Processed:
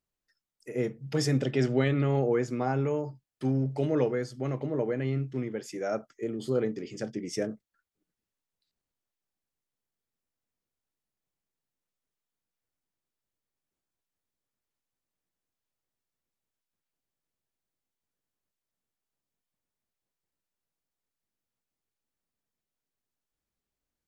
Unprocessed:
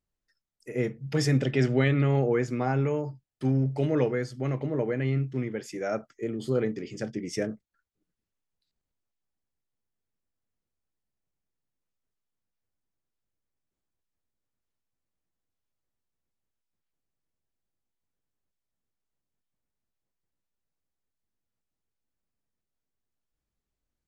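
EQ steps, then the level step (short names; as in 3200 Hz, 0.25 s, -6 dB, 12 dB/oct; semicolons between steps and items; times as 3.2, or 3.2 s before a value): low shelf 130 Hz -7.5 dB; dynamic EQ 2100 Hz, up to -5 dB, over -50 dBFS, Q 1.3; 0.0 dB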